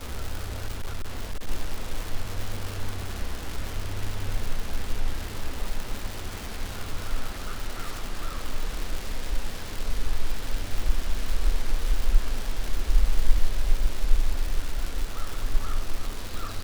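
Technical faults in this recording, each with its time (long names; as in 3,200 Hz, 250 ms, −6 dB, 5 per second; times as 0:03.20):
surface crackle 320 per second −28 dBFS
0:00.65–0:01.48: clipping −24.5 dBFS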